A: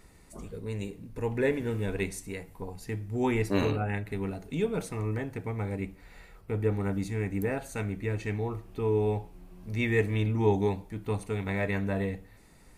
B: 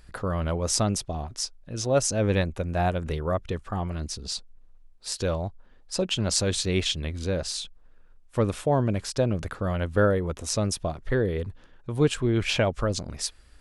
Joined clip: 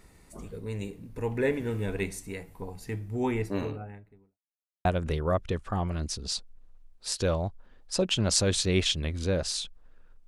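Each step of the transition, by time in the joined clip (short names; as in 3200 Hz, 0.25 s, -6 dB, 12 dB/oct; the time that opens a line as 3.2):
A
2.96–4.39 studio fade out
4.39–4.85 mute
4.85 switch to B from 2.85 s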